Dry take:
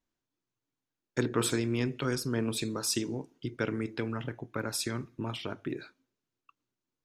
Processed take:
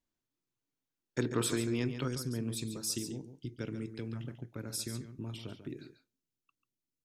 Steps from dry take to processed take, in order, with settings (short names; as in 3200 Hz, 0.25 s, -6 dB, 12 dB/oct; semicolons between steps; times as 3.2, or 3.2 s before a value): bell 1100 Hz -3 dB 2.9 oct, from 2.08 s -14 dB; echo 0.141 s -10 dB; gain -2 dB